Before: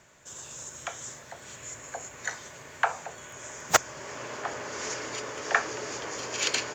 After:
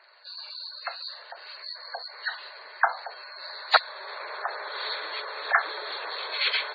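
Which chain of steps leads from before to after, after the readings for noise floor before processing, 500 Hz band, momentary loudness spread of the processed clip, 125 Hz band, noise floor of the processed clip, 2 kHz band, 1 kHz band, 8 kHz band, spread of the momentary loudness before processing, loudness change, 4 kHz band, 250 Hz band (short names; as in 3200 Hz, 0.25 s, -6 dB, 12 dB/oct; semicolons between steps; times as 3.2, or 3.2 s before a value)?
-49 dBFS, -1.5 dB, 16 LU, under -40 dB, -47 dBFS, +3.0 dB, +3.0 dB, under -35 dB, 16 LU, +2.0 dB, +6.0 dB, under -15 dB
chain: nonlinear frequency compression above 1700 Hz 1.5:1; HPF 710 Hz 12 dB/oct; spectral gate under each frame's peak -15 dB strong; gain +4.5 dB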